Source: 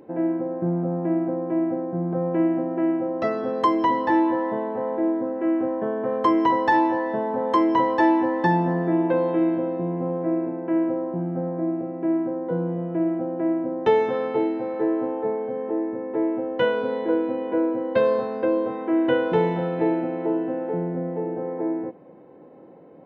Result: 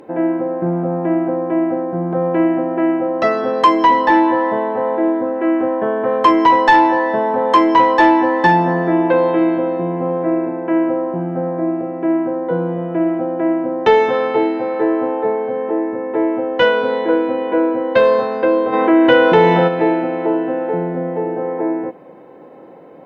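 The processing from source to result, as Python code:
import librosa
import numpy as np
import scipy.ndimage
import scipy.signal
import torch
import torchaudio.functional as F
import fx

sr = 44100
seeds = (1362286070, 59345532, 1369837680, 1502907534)

y = fx.low_shelf(x, sr, hz=480.0, db=-10.0)
y = fx.fold_sine(y, sr, drive_db=6, ceiling_db=-6.5)
y = fx.env_flatten(y, sr, amount_pct=50, at=(18.72, 19.67), fade=0.02)
y = y * 10.0 ** (3.0 / 20.0)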